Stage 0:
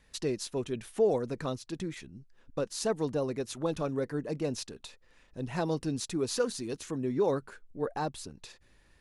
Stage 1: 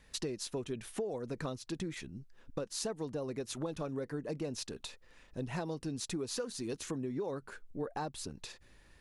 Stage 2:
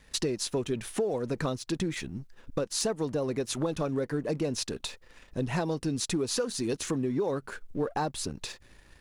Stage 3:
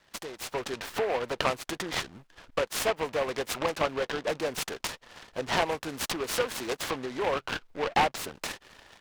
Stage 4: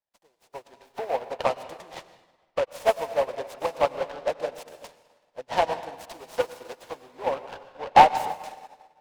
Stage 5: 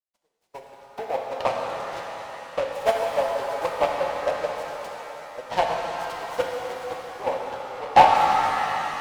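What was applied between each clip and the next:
downward compressor 12 to 1, threshold −36 dBFS, peak gain reduction 15.5 dB; level +2 dB
leveller curve on the samples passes 1; level +4.5 dB
three-way crossover with the lows and the highs turned down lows −23 dB, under 590 Hz, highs −13 dB, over 3,200 Hz; automatic gain control gain up to 10 dB; short delay modulated by noise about 1,300 Hz, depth 0.091 ms
flat-topped bell 700 Hz +8 dB 1.1 octaves; on a send at −2.5 dB: convolution reverb RT60 3.2 s, pre-delay 92 ms; on the sum: expander for the loud parts 2.5 to 1, over −40 dBFS; level +5 dB
noise gate −51 dBFS, range −12 dB; transient designer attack +2 dB, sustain −5 dB; reverb with rising layers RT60 3.8 s, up +7 semitones, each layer −8 dB, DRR 0 dB; level −2 dB

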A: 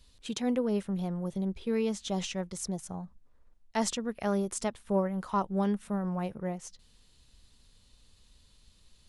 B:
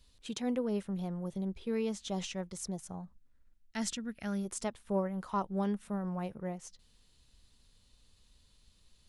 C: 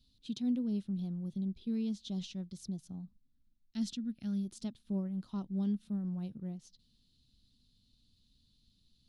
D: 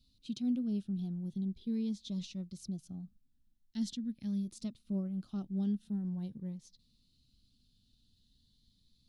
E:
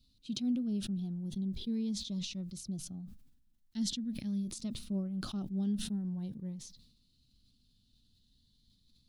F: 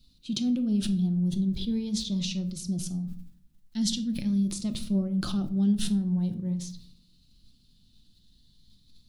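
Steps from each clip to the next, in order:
gain on a spectral selection 0:03.16–0:04.45, 340–1,300 Hz −9 dB; level −4 dB
graphic EQ with 10 bands 125 Hz +7 dB, 250 Hz +11 dB, 500 Hz −8 dB, 1,000 Hz −9 dB, 2,000 Hz −10 dB, 4,000 Hz +11 dB, 8,000 Hz −8 dB; level −8 dB
phaser whose notches keep moving one way rising 0.43 Hz
level that may fall only so fast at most 68 dB per second
rectangular room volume 620 cubic metres, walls furnished, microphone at 0.85 metres; level +7 dB

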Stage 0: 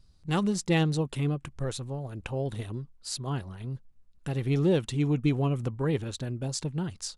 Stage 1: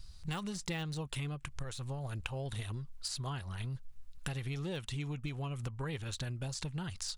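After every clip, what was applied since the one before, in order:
de-essing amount 100%
parametric band 310 Hz −15 dB 2.7 octaves
downward compressor 10 to 1, threshold −47 dBFS, peak gain reduction 17 dB
level +11.5 dB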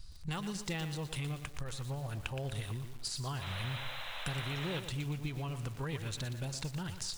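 sound drawn into the spectrogram noise, 0:03.41–0:04.80, 490–4,100 Hz −44 dBFS
feedback echo at a low word length 118 ms, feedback 55%, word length 8 bits, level −8.5 dB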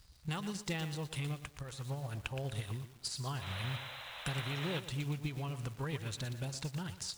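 high-pass filter 43 Hz
surface crackle 320 per second −48 dBFS
expander for the loud parts 1.5 to 1, over −49 dBFS
level +1 dB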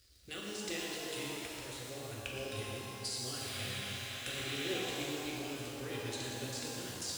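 high-pass filter 78 Hz
phaser with its sweep stopped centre 380 Hz, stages 4
reverb with rising layers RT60 3.1 s, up +12 semitones, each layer −8 dB, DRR −4 dB
level −1 dB

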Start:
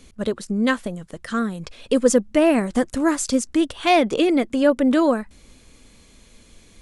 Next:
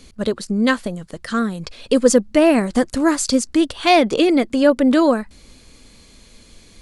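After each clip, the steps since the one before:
parametric band 4,500 Hz +6.5 dB 0.31 octaves
level +3 dB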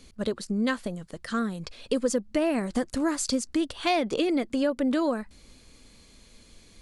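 downward compressor 4 to 1, threshold −15 dBFS, peak gain reduction 7.5 dB
level −7 dB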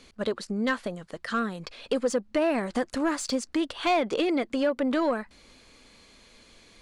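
mid-hump overdrive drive 13 dB, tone 2,400 Hz, clips at −12.5 dBFS
level −1.5 dB

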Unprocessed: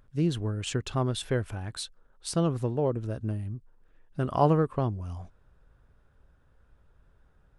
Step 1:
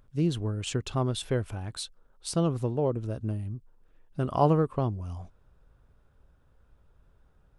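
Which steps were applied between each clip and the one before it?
parametric band 1,700 Hz −4.5 dB 0.53 octaves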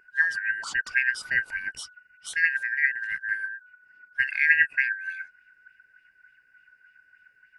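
band-splitting scrambler in four parts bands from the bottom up 2143
auto-filter bell 3.4 Hz 430–3,400 Hz +10 dB
level −2 dB

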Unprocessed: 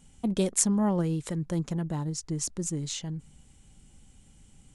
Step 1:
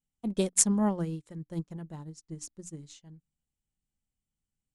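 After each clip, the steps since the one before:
mains-hum notches 60/120/180/240/300 Hz
expander for the loud parts 2.5 to 1, over −45 dBFS
level +3 dB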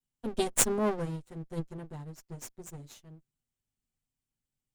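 lower of the sound and its delayed copy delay 7.8 ms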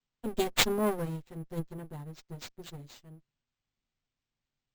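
sample-rate reduction 11,000 Hz, jitter 0%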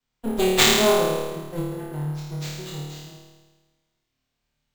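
flutter between parallel walls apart 4.6 metres, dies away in 1.3 s
level +5 dB

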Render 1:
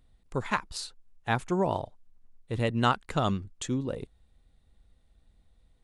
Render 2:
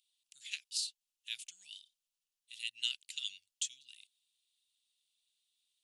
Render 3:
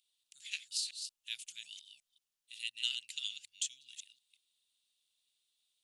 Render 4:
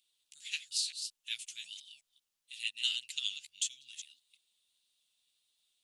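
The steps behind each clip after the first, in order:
elliptic high-pass filter 2,800 Hz, stop band 60 dB; level +2 dB
delay that plays each chunk backwards 182 ms, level −7 dB
flanger 1.6 Hz, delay 4.8 ms, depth 10 ms, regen −1%; level +6 dB

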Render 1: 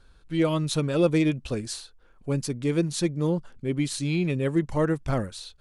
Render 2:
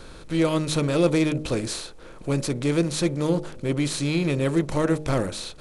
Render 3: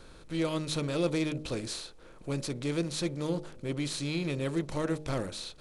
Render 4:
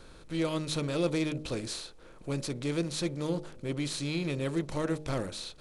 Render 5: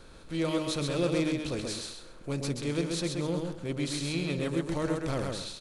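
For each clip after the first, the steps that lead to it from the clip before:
compressor on every frequency bin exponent 0.6; hum removal 51.24 Hz, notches 17
dynamic equaliser 4,100 Hz, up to +4 dB, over −45 dBFS, Q 1.1; level −9 dB
no processing that can be heard
repeating echo 131 ms, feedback 23%, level −4 dB

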